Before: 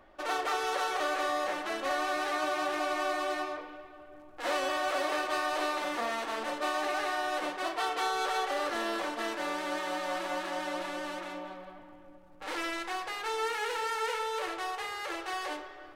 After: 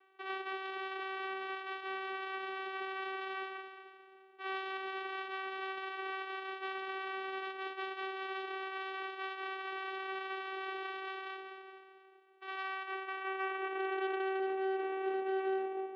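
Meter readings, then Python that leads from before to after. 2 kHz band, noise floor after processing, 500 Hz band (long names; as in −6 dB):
−5.0 dB, −60 dBFS, −5.0 dB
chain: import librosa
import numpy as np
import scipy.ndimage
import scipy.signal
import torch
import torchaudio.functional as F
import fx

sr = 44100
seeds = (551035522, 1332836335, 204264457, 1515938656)

p1 = fx.filter_sweep_bandpass(x, sr, from_hz=2500.0, to_hz=590.0, start_s=12.52, end_s=14.59, q=2.6)
p2 = fx.rider(p1, sr, range_db=4, speed_s=0.5)
p3 = p2 + fx.echo_feedback(p2, sr, ms=219, feedback_pct=35, wet_db=-11.0, dry=0)
p4 = fx.vocoder(p3, sr, bands=4, carrier='saw', carrier_hz=383.0)
p5 = 10.0 ** (-36.5 / 20.0) * (np.abs((p4 / 10.0 ** (-36.5 / 20.0) + 3.0) % 4.0 - 2.0) - 1.0)
p6 = p4 + (p5 * librosa.db_to_amplitude(-3.5))
p7 = scipy.signal.sosfilt(scipy.signal.ellip(3, 1.0, 40, [200.0, 3500.0], 'bandpass', fs=sr, output='sos'), p6)
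y = p7 * librosa.db_to_amplitude(1.0)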